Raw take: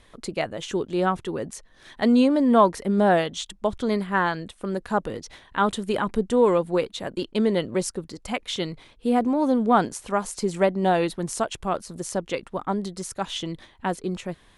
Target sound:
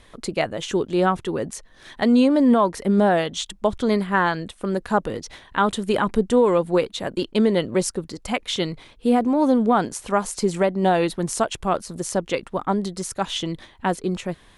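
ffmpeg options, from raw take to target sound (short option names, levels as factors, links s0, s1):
-af "alimiter=limit=0.251:level=0:latency=1:release=255,volume=1.58"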